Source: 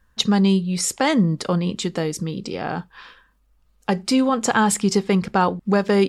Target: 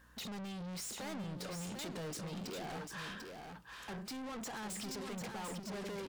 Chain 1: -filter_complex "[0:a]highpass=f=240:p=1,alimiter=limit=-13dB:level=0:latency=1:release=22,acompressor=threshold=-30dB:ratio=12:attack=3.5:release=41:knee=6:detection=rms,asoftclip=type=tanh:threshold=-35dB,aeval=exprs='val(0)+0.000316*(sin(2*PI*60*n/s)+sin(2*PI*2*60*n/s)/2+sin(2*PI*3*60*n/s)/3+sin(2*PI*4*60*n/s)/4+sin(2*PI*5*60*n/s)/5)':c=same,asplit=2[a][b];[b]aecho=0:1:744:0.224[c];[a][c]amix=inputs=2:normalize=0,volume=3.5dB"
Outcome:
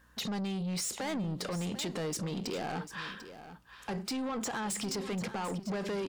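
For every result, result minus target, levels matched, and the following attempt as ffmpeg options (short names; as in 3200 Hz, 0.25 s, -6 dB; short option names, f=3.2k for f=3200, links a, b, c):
echo-to-direct -7.5 dB; soft clip: distortion -6 dB
-filter_complex "[0:a]highpass=f=240:p=1,alimiter=limit=-13dB:level=0:latency=1:release=22,acompressor=threshold=-30dB:ratio=12:attack=3.5:release=41:knee=6:detection=rms,asoftclip=type=tanh:threshold=-35dB,aeval=exprs='val(0)+0.000316*(sin(2*PI*60*n/s)+sin(2*PI*2*60*n/s)/2+sin(2*PI*3*60*n/s)/3+sin(2*PI*4*60*n/s)/4+sin(2*PI*5*60*n/s)/5)':c=same,asplit=2[a][b];[b]aecho=0:1:744:0.531[c];[a][c]amix=inputs=2:normalize=0,volume=3.5dB"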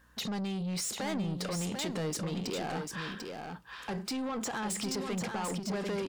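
soft clip: distortion -6 dB
-filter_complex "[0:a]highpass=f=240:p=1,alimiter=limit=-13dB:level=0:latency=1:release=22,acompressor=threshold=-30dB:ratio=12:attack=3.5:release=41:knee=6:detection=rms,asoftclip=type=tanh:threshold=-46dB,aeval=exprs='val(0)+0.000316*(sin(2*PI*60*n/s)+sin(2*PI*2*60*n/s)/2+sin(2*PI*3*60*n/s)/3+sin(2*PI*4*60*n/s)/4+sin(2*PI*5*60*n/s)/5)':c=same,asplit=2[a][b];[b]aecho=0:1:744:0.531[c];[a][c]amix=inputs=2:normalize=0,volume=3.5dB"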